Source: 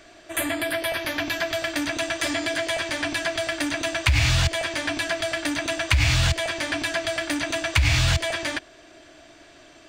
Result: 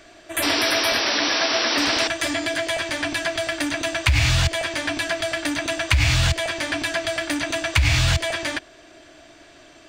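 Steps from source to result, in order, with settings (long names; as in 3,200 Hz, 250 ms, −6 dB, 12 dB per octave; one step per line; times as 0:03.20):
0:01.01–0:01.78: three-way crossover with the lows and the highs turned down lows −15 dB, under 150 Hz, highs −19 dB, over 2,400 Hz
0:00.42–0:02.08: sound drawn into the spectrogram noise 220–5,900 Hz −24 dBFS
level +1.5 dB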